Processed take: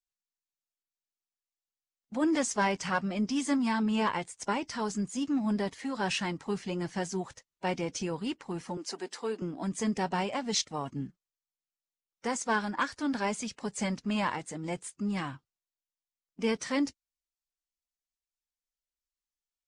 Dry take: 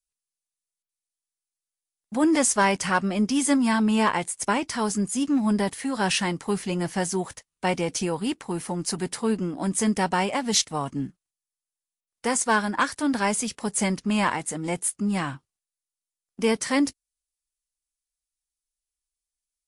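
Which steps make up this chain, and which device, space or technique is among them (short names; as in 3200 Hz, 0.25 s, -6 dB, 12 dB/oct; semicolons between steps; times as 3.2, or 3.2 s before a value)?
clip after many re-uploads (LPF 7300 Hz 24 dB/oct; bin magnitudes rounded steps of 15 dB); 8.77–9.42 HPF 290 Hz 24 dB/oct; gain -6.5 dB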